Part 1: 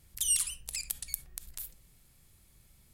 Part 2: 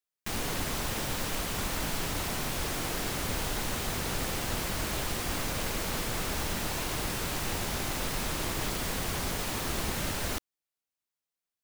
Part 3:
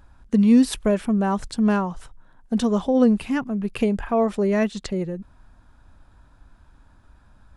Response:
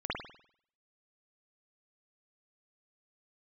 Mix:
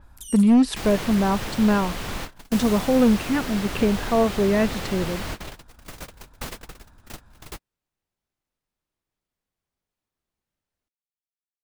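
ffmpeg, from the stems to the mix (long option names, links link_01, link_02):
-filter_complex "[0:a]acontrast=36,volume=-14.5dB[link_01];[1:a]adelay=500,volume=2.5dB[link_02];[2:a]asoftclip=type=hard:threshold=-12dB,volume=0.5dB,asplit=2[link_03][link_04];[link_04]apad=whole_len=535117[link_05];[link_02][link_05]sidechaingate=range=-58dB:threshold=-46dB:ratio=16:detection=peak[link_06];[link_01][link_06][link_03]amix=inputs=3:normalize=0,adynamicequalizer=threshold=0.00447:dfrequency=5600:dqfactor=0.7:tfrequency=5600:tqfactor=0.7:attack=5:release=100:ratio=0.375:range=4:mode=cutabove:tftype=highshelf"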